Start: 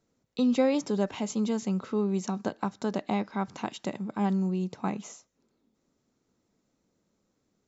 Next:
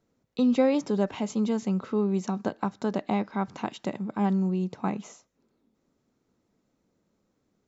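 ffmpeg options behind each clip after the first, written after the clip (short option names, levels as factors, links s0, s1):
-af "highshelf=f=4400:g=-8,volume=1.26"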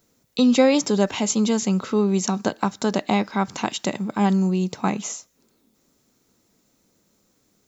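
-af "crystalizer=i=4.5:c=0,volume=1.88"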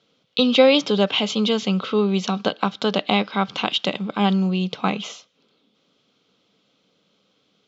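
-af "highpass=220,equalizer=f=240:t=q:w=4:g=-7,equalizer=f=350:t=q:w=4:g=-10,equalizer=f=640:t=q:w=4:g=-4,equalizer=f=910:t=q:w=4:g=-8,equalizer=f=1800:t=q:w=4:g=-10,equalizer=f=3200:t=q:w=4:g=9,lowpass=f=4100:w=0.5412,lowpass=f=4100:w=1.3066,volume=2.11"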